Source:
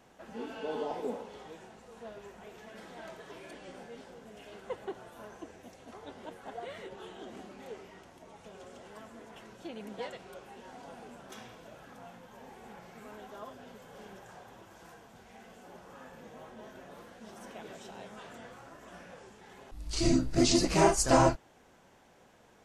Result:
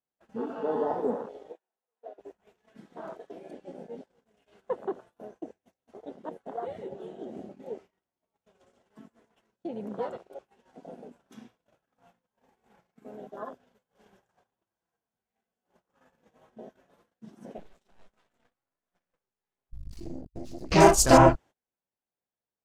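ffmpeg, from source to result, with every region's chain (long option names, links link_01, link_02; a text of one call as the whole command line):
ffmpeg -i in.wav -filter_complex "[0:a]asettb=1/sr,asplit=3[link_01][link_02][link_03];[link_01]atrim=end=1.524[link_04];[link_02]atrim=start=1.52:end=2.19,asetpts=PTS-STARTPTS,afade=type=in:duration=0.004:curve=qsin,afade=type=out:start_time=0.666:duration=0.004:curve=qsin,highpass=470,highshelf=frequency=2900:gain=-9[link_05];[link_03]atrim=start=2.186[link_06];[link_04][link_05]acrossfade=duration=0.004:curve1=hsin:curve2=qsin[link_07];[link_07][link_06]acrossfade=duration=0.004:curve1=qsin:curve2=hsin,asettb=1/sr,asplit=3[link_08][link_09][link_10];[link_08]atrim=end=17.584[link_11];[link_09]atrim=start=17.58:end=20.72,asetpts=PTS-STARTPTS,afade=type=in:duration=0.004:curve=qsin,afade=type=out:start_time=3.136:duration=0.004:curve=qsin,aeval=exprs='max(val(0),0)':channel_layout=same,acompressor=threshold=-39dB:ratio=6:attack=3.2:release=140:knee=1:detection=peak,aeval=exprs='(tanh(25.1*val(0)+0.15)-tanh(0.15))/25.1':channel_layout=same[link_12];[link_10]atrim=start=20.716[link_13];[link_11][link_12]acrossfade=duration=0.004:curve1=hsin:curve2=qsin[link_14];[link_14][link_13]acrossfade=duration=0.004:curve1=qsin:curve2=hsin,agate=range=-27dB:threshold=-48dB:ratio=16:detection=peak,afwtdn=0.00891,volume=7dB" out.wav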